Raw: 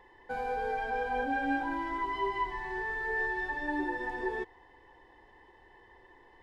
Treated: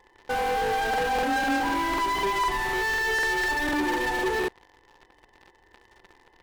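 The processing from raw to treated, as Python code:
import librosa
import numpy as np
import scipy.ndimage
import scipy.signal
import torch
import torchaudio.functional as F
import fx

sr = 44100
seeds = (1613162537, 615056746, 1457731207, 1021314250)

p1 = fx.fuzz(x, sr, gain_db=44.0, gate_db=-51.0)
p2 = x + (p1 * 10.0 ** (-12.0 / 20.0))
p3 = fx.buffer_crackle(p2, sr, first_s=0.89, period_s=0.25, block=2048, kind='repeat')
y = p3 * 10.0 ** (-2.0 / 20.0)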